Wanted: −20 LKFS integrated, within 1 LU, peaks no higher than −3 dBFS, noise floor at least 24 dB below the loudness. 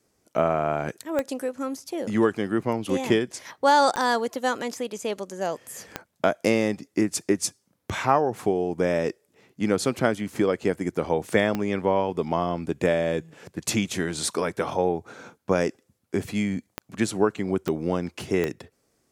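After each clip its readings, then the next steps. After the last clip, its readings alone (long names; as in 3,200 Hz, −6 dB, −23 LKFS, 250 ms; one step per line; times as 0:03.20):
number of clicks 7; integrated loudness −26.0 LKFS; sample peak −5.0 dBFS; target loudness −20.0 LKFS
→ click removal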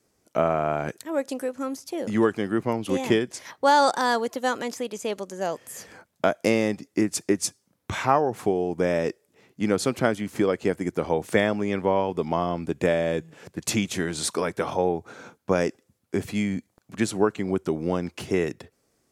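number of clicks 1; integrated loudness −26.0 LKFS; sample peak −5.0 dBFS; target loudness −20.0 LKFS
→ level +6 dB
brickwall limiter −3 dBFS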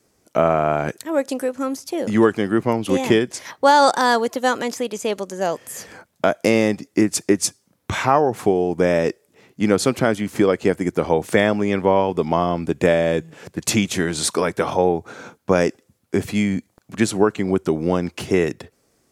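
integrated loudness −20.0 LKFS; sample peak −3.0 dBFS; background noise floor −65 dBFS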